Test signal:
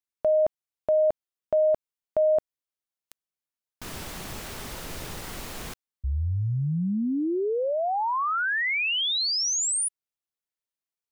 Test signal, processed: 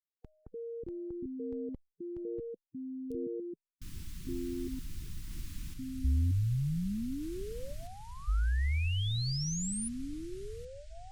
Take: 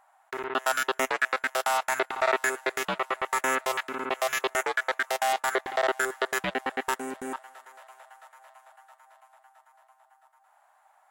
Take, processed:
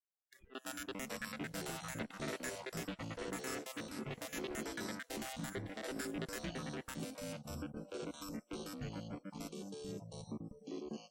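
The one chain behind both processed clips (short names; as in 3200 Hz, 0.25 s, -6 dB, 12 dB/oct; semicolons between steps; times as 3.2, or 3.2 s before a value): echoes that change speed 0.213 s, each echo -5 st, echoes 3; spectral noise reduction 29 dB; passive tone stack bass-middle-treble 10-0-1; gain +7.5 dB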